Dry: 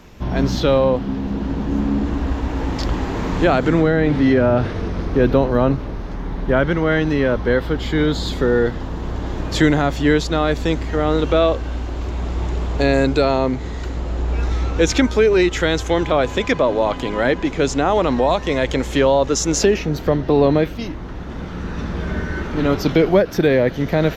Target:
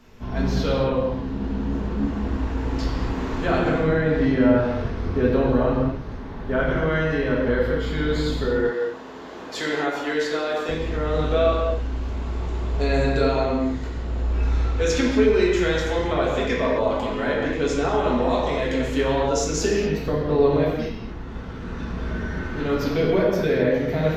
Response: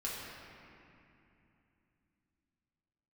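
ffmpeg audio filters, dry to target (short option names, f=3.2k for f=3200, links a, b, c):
-filter_complex "[0:a]asettb=1/sr,asplit=3[a][b][c];[a]atrim=end=8.454[d];[b]atrim=start=8.45:end=10.69,asetpts=PTS-STARTPTS,afade=t=in:d=0.004:c=qsin,afade=t=out:st=2.236:d=0.004:c=qsin,highpass=370[e];[c]atrim=start=10.686[f];[d][e]acrossfade=d=0.004:c1=hsin:c2=qsin[g];[g][f]acrossfade=d=0.004:c1=qsin:c2=hsin[h];[1:a]atrim=start_sample=2205,afade=t=out:st=0.32:d=0.01,atrim=end_sample=14553[i];[h][i]afir=irnorm=-1:irlink=0,volume=-6.5dB"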